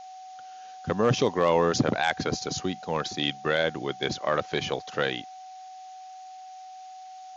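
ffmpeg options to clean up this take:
ffmpeg -i in.wav -af "bandreject=frequency=750:width=30,afftdn=noise_reduction=28:noise_floor=-44" out.wav

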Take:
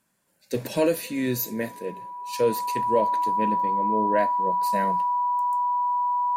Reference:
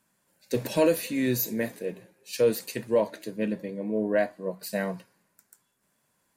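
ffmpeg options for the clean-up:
ffmpeg -i in.wav -af "bandreject=frequency=980:width=30" out.wav

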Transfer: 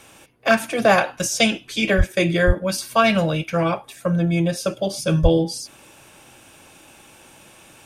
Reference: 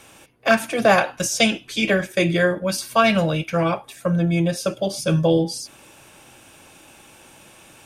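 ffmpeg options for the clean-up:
ffmpeg -i in.wav -filter_complex "[0:a]asplit=3[link_01][link_02][link_03];[link_01]afade=type=out:start_time=1.97:duration=0.02[link_04];[link_02]highpass=frequency=140:width=0.5412,highpass=frequency=140:width=1.3066,afade=type=in:start_time=1.97:duration=0.02,afade=type=out:start_time=2.09:duration=0.02[link_05];[link_03]afade=type=in:start_time=2.09:duration=0.02[link_06];[link_04][link_05][link_06]amix=inputs=3:normalize=0,asplit=3[link_07][link_08][link_09];[link_07]afade=type=out:start_time=2.46:duration=0.02[link_10];[link_08]highpass=frequency=140:width=0.5412,highpass=frequency=140:width=1.3066,afade=type=in:start_time=2.46:duration=0.02,afade=type=out:start_time=2.58:duration=0.02[link_11];[link_09]afade=type=in:start_time=2.58:duration=0.02[link_12];[link_10][link_11][link_12]amix=inputs=3:normalize=0,asplit=3[link_13][link_14][link_15];[link_13]afade=type=out:start_time=5.22:duration=0.02[link_16];[link_14]highpass=frequency=140:width=0.5412,highpass=frequency=140:width=1.3066,afade=type=in:start_time=5.22:duration=0.02,afade=type=out:start_time=5.34:duration=0.02[link_17];[link_15]afade=type=in:start_time=5.34:duration=0.02[link_18];[link_16][link_17][link_18]amix=inputs=3:normalize=0" out.wav

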